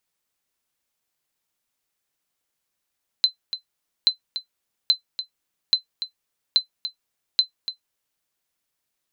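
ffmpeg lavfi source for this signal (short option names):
-f lavfi -i "aevalsrc='0.422*(sin(2*PI*4060*mod(t,0.83))*exp(-6.91*mod(t,0.83)/0.11)+0.266*sin(2*PI*4060*max(mod(t,0.83)-0.29,0))*exp(-6.91*max(mod(t,0.83)-0.29,0)/0.11))':d=4.98:s=44100"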